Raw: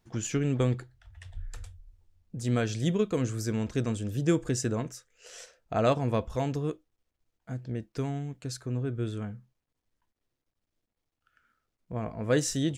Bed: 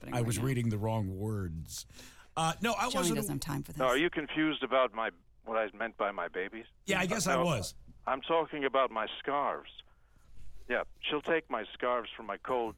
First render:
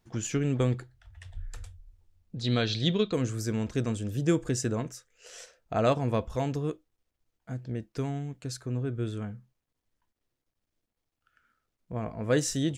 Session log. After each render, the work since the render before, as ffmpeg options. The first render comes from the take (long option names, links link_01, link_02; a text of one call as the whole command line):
ffmpeg -i in.wav -filter_complex "[0:a]asettb=1/sr,asplit=3[link_01][link_02][link_03];[link_01]atrim=end=2.364[link_04];[link_02]atrim=start=2.36:end=3.13,asetpts=PTS-STARTPTS,afade=type=in:duration=0.004:curve=qsin,afade=type=out:start_time=0.766:duration=0.004:curve=qsin,lowpass=frequency=4000:width_type=q:width=8.5[link_05];[link_03]atrim=start=3.126[link_06];[link_04][link_05]acrossfade=duration=0.004:curve1=hsin:curve2=qsin[link_07];[link_07][link_06]acrossfade=duration=0.004:curve1=qsin:curve2=hsin" out.wav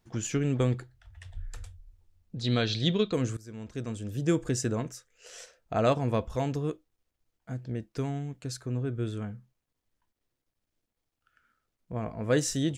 ffmpeg -i in.wav -filter_complex "[0:a]asplit=2[link_01][link_02];[link_01]atrim=end=3.37,asetpts=PTS-STARTPTS,afade=type=out:start_time=3.366:duration=0.004:curve=hsin:silence=0.0944061[link_03];[link_02]atrim=start=3.37,asetpts=PTS-STARTPTS,afade=type=in:duration=1.05:silence=0.0944061[link_04];[link_03][link_04]concat=n=2:v=0:a=1" out.wav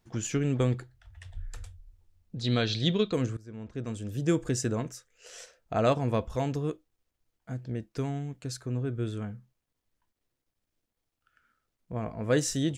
ffmpeg -i in.wav -filter_complex "[0:a]asettb=1/sr,asplit=3[link_01][link_02][link_03];[link_01]atrim=end=3.264[link_04];[link_02]atrim=start=3.26:end=3.86,asetpts=PTS-STARTPTS,afade=type=in:duration=0.004:curve=qsin,afade=type=out:start_time=0.596:duration=0.004:curve=qsin,lowpass=frequency=2000:poles=1[link_05];[link_03]atrim=start=3.856[link_06];[link_04][link_05]acrossfade=duration=0.004:curve1=hsin:curve2=qsin[link_07];[link_07][link_06]acrossfade=duration=0.004:curve1=qsin:curve2=hsin" out.wav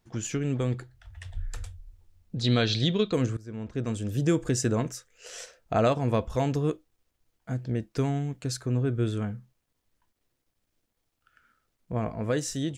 ffmpeg -i in.wav -af "alimiter=limit=-18dB:level=0:latency=1:release=377,dynaudnorm=framelen=160:gausssize=9:maxgain=5dB" out.wav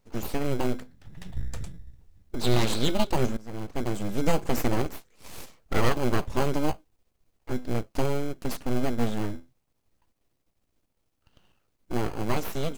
ffmpeg -i in.wav -filter_complex "[0:a]aeval=exprs='abs(val(0))':channel_layout=same,asplit=2[link_01][link_02];[link_02]acrusher=samples=24:mix=1:aa=0.000001,volume=-3.5dB[link_03];[link_01][link_03]amix=inputs=2:normalize=0" out.wav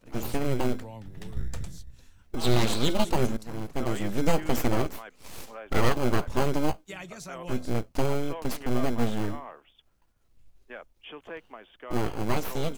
ffmpeg -i in.wav -i bed.wav -filter_complex "[1:a]volume=-10.5dB[link_01];[0:a][link_01]amix=inputs=2:normalize=0" out.wav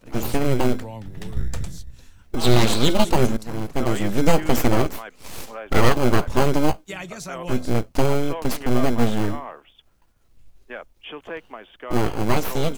ffmpeg -i in.wav -af "volume=7dB" out.wav